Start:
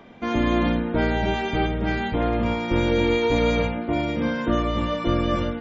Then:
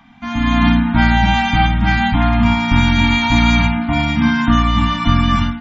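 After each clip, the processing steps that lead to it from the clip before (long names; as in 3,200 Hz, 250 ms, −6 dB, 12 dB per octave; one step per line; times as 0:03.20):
elliptic band-stop filter 270–750 Hz, stop band 40 dB
automatic gain control gain up to 11 dB
level +2 dB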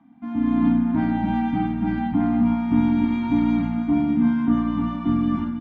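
resonant band-pass 330 Hz, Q 3.2
single-tap delay 325 ms −8.5 dB
level +4 dB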